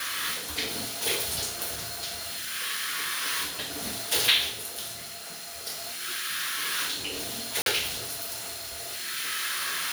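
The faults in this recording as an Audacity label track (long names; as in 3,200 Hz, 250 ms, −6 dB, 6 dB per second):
7.620000	7.660000	drop-out 42 ms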